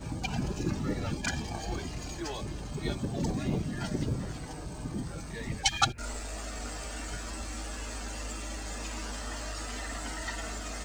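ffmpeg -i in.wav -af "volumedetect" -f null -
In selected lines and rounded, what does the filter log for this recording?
mean_volume: -34.6 dB
max_volume: -9.4 dB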